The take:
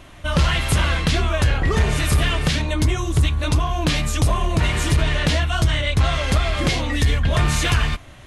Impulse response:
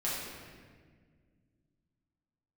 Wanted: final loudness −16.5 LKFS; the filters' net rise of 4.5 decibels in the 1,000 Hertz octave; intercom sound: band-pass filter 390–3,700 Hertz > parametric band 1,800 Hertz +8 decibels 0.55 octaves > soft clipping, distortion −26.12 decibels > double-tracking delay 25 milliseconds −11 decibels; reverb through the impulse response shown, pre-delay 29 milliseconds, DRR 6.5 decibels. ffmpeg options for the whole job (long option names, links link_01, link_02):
-filter_complex "[0:a]equalizer=frequency=1000:width_type=o:gain=4.5,asplit=2[link_01][link_02];[1:a]atrim=start_sample=2205,adelay=29[link_03];[link_02][link_03]afir=irnorm=-1:irlink=0,volume=-12.5dB[link_04];[link_01][link_04]amix=inputs=2:normalize=0,highpass=390,lowpass=3700,equalizer=frequency=1800:width_type=o:width=0.55:gain=8,asoftclip=threshold=-8dB,asplit=2[link_05][link_06];[link_06]adelay=25,volume=-11dB[link_07];[link_05][link_07]amix=inputs=2:normalize=0,volume=3.5dB"